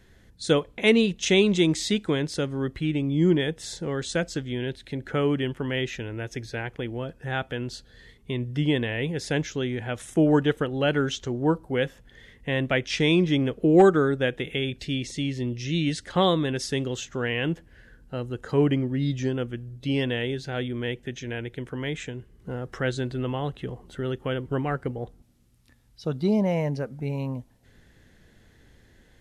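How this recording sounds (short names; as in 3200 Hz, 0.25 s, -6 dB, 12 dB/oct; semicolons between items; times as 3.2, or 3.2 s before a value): noise floor -57 dBFS; spectral tilt -5.0 dB/oct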